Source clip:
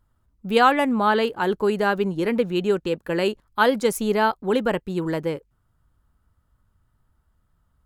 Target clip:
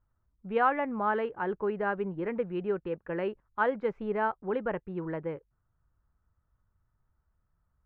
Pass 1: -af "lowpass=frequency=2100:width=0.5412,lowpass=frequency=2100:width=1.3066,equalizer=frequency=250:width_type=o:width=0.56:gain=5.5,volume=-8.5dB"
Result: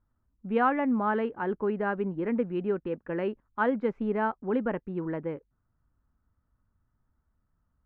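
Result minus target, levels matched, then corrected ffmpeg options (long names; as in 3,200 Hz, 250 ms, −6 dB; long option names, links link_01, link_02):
250 Hz band +4.5 dB
-af "lowpass=frequency=2100:width=0.5412,lowpass=frequency=2100:width=1.3066,equalizer=frequency=250:width_type=o:width=0.56:gain=-5,volume=-8.5dB"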